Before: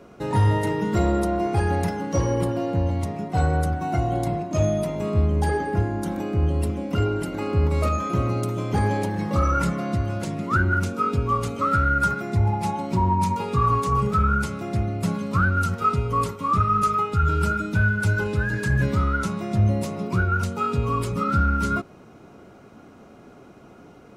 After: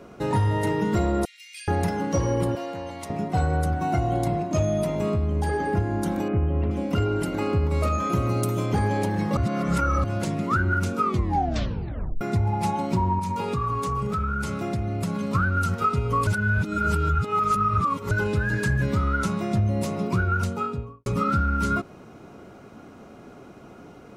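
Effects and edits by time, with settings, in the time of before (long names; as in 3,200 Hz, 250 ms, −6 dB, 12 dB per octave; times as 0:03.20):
0:01.25–0:01.68: Butterworth high-pass 2,200 Hz 48 dB per octave
0:02.55–0:03.10: high-pass filter 1,100 Hz 6 dB per octave
0:05.15–0:05.69: downward compressor 2.5 to 1, threshold −23 dBFS
0:06.28–0:06.71: low-pass filter 2,600 Hz 24 dB per octave
0:08.12–0:08.66: high-shelf EQ 9,200 Hz +12 dB
0:09.37–0:10.04: reverse
0:11.01: tape stop 1.20 s
0:13.19–0:15.35: downward compressor 5 to 1, threshold −25 dBFS
0:16.27–0:18.11: reverse
0:20.35–0:21.06: fade out and dull
whole clip: downward compressor, threshold −21 dBFS; level +2 dB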